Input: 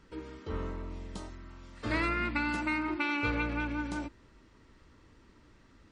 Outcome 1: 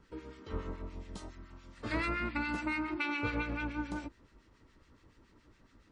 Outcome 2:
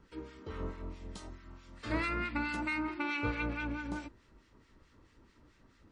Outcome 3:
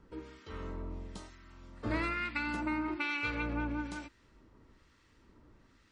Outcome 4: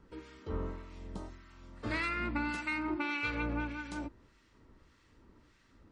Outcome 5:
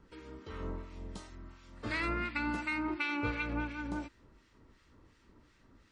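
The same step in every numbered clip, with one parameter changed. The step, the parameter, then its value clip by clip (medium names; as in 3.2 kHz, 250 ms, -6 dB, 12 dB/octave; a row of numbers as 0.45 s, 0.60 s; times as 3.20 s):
harmonic tremolo, rate: 7.1 Hz, 4.6 Hz, 1.1 Hz, 1.7 Hz, 2.8 Hz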